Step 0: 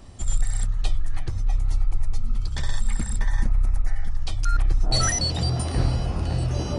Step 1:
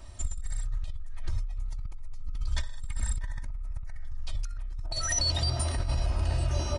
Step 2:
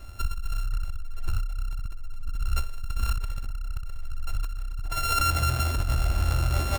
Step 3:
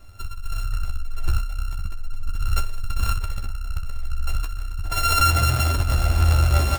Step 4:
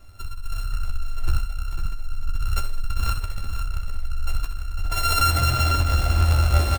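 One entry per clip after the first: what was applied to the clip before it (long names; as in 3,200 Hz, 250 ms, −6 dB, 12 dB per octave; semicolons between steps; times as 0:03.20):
parametric band 280 Hz −11 dB 1.2 octaves; comb filter 3.2 ms, depth 74%; compressor whose output falls as the input rises −22 dBFS, ratio −1; level −8 dB
samples sorted by size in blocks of 32 samples; level +3.5 dB
automatic gain control gain up to 11 dB; flanger 0.36 Hz, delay 9.5 ms, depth 5.9 ms, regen +35%
multi-tap delay 68/75/500 ms −12.5/−17/−8 dB; level −1.5 dB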